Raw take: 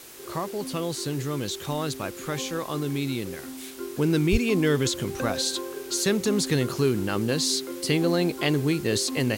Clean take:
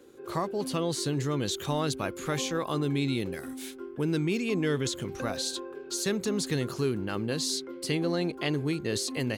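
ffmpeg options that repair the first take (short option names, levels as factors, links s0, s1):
-filter_complex "[0:a]adeclick=t=4,asplit=3[s0][s1][s2];[s0]afade=t=out:st=4.31:d=0.02[s3];[s1]highpass=f=140:w=0.5412,highpass=f=140:w=1.3066,afade=t=in:st=4.31:d=0.02,afade=t=out:st=4.43:d=0.02[s4];[s2]afade=t=in:st=4.43:d=0.02[s5];[s3][s4][s5]amix=inputs=3:normalize=0,afwtdn=0.0056,asetnsamples=n=441:p=0,asendcmd='3.78 volume volume -5.5dB',volume=1"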